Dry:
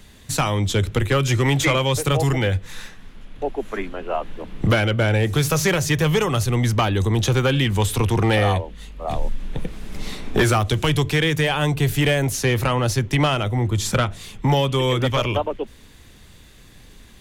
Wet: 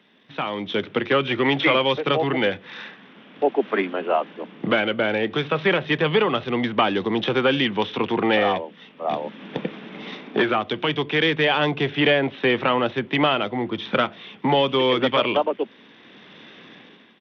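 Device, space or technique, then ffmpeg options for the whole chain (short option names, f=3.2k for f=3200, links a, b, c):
Bluetooth headset: -af "highpass=f=200:w=0.5412,highpass=f=200:w=1.3066,dynaudnorm=f=270:g=5:m=16dB,aresample=8000,aresample=44100,volume=-6dB" -ar 32000 -c:a sbc -b:a 64k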